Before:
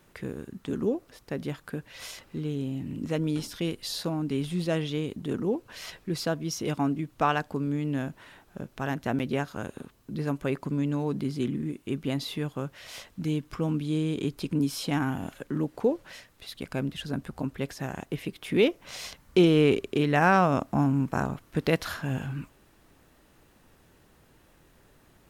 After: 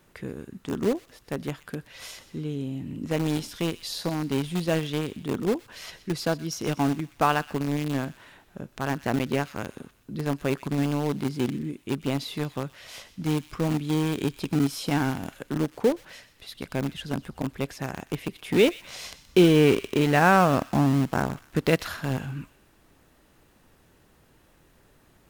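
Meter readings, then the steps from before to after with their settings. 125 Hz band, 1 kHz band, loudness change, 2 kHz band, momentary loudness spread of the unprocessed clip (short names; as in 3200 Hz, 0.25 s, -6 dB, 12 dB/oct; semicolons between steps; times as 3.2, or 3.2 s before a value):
+2.0 dB, +3.0 dB, +2.5 dB, +3.0 dB, 14 LU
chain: in parallel at -9 dB: bit-crush 4-bit; on the sum: thin delay 0.124 s, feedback 43%, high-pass 2000 Hz, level -14 dB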